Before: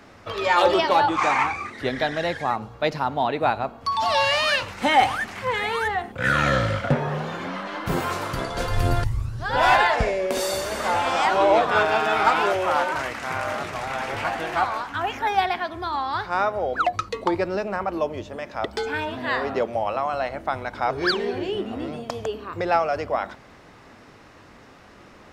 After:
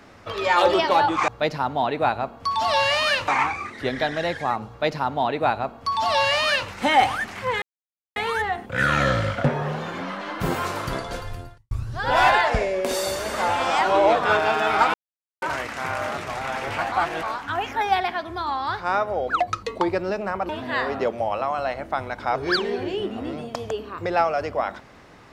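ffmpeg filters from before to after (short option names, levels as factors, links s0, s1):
-filter_complex "[0:a]asplit=10[s0][s1][s2][s3][s4][s5][s6][s7][s8][s9];[s0]atrim=end=1.282[s10];[s1]atrim=start=2.688:end=4.692[s11];[s2]atrim=start=1.278:end=5.62,asetpts=PTS-STARTPTS,afade=t=out:st=4.338:d=0.004:c=hsin,apad=pad_dur=0.54[s12];[s3]atrim=start=5.62:end=9.17,asetpts=PTS-STARTPTS,afade=t=in:d=0.004:c=hsin,afade=t=out:st=2.81:d=0.74:c=qua[s13];[s4]atrim=start=9.17:end=12.4,asetpts=PTS-STARTPTS,afade=t=in:d=0.004:c=hsin,afade=t=out:st=3.226:d=0.004:c=hsin[s14];[s5]atrim=start=12.4:end=12.88,asetpts=PTS-STARTPTS,volume=0[s15];[s6]atrim=start=12.88:end=14.382,asetpts=PTS-STARTPTS,afade=t=in:d=0.004:c=hsin[s16];[s7]atrim=start=14.378:end=14.692,asetpts=PTS-STARTPTS,areverse[s17];[s8]atrim=start=14.688:end=17.952[s18];[s9]atrim=start=19.038[s19];[s10][s11]acrossfade=d=0.004:c1=hsin:c2=hsin[s20];[s12][s13][s14][s15][s16]concat=n=5:v=0:a=1[s21];[s20][s21]acrossfade=d=0.004:c1=hsin:c2=hsin[s22];[s22][s17]acrossfade=d=0.004:c1=hsin:c2=hsin[s23];[s23][s18]acrossfade=d=0.004:c1=hsin:c2=hsin[s24];[s24][s19]acrossfade=d=0.004:c1=hsin:c2=hsin"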